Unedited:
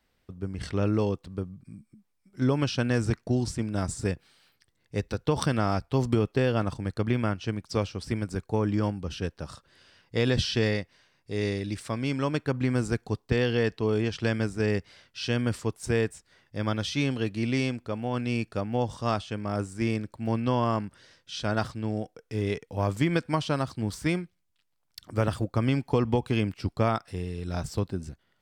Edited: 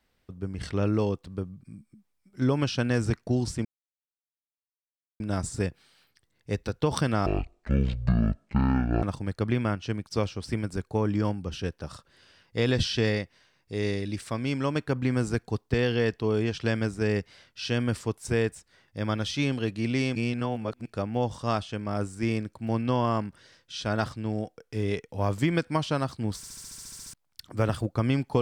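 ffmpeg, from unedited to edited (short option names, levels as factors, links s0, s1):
-filter_complex "[0:a]asplit=17[s0][s1][s2][s3][s4][s5][s6][s7][s8][s9][s10][s11][s12][s13][s14][s15][s16];[s0]atrim=end=3.65,asetpts=PTS-STARTPTS,afade=t=out:st=3.646:d=0.004:c=hsin,apad=pad_dur=1.55[s17];[s1]atrim=start=3.65:end=5.714,asetpts=PTS-STARTPTS,afade=t=in:d=0.004:c=hsin[s18];[s2]atrim=start=5.71:end=6.61,asetpts=PTS-STARTPTS,asetrate=22491,aresample=44100[s19];[s3]atrim=start=6.606:end=17.742[s20];[s4]atrim=start=17.738:end=18.442,asetpts=PTS-STARTPTS,areverse[s21];[s5]atrim=start=18.438:end=24.022[s22];[s6]atrim=start=23.948:end=24.022[s23];[s7]atrim=start=23.948:end=24.022[s24];[s8]atrim=start=23.948:end=24.022[s25];[s9]atrim=start=23.948:end=24.022[s26];[s10]atrim=start=23.948:end=24.022[s27];[s11]atrim=start=23.948:end=24.022[s28];[s12]atrim=start=23.948:end=24.022[s29];[s13]atrim=start=23.948:end=24.022[s30];[s14]atrim=start=23.948:end=24.022[s31];[s15]atrim=start=23.948:end=24.022[s32];[s16]atrim=start=24.718[s33];[s17][s18]concat=n=2:v=0:a=1[s34];[s34][s19]acrossfade=d=0.004:c1=hsin:c2=hsin[s35];[s35][s20]acrossfade=d=0.004:c1=hsin:c2=hsin[s36];[s36][s21]acrossfade=d=0.004:c1=hsin:c2=hsin[s37];[s37][s22]acrossfade=d=0.004:c1=hsin:c2=hsin[s38];[s38][s23]acrossfade=d=0.004:c1=hsin:c2=hsin[s39];[s39][s24]acrossfade=d=0.004:c1=hsin:c2=hsin[s40];[s40][s25]acrossfade=d=0.004:c1=hsin:c2=hsin[s41];[s41][s26]acrossfade=d=0.004:c1=hsin:c2=hsin[s42];[s42][s27]acrossfade=d=0.004:c1=hsin:c2=hsin[s43];[s43][s28]acrossfade=d=0.004:c1=hsin:c2=hsin[s44];[s44][s29]acrossfade=d=0.004:c1=hsin:c2=hsin[s45];[s45][s30]acrossfade=d=0.004:c1=hsin:c2=hsin[s46];[s46][s31]acrossfade=d=0.004:c1=hsin:c2=hsin[s47];[s47][s32]acrossfade=d=0.004:c1=hsin:c2=hsin[s48];[s48][s33]acrossfade=d=0.004:c1=hsin:c2=hsin"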